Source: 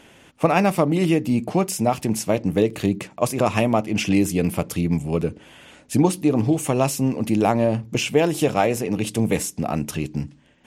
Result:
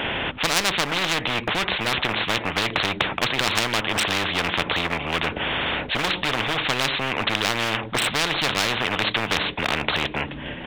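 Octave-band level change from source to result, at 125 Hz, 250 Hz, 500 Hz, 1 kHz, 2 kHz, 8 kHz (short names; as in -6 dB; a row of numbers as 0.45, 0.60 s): -8.5, -10.5, -7.5, +0.5, +9.5, -1.5 dB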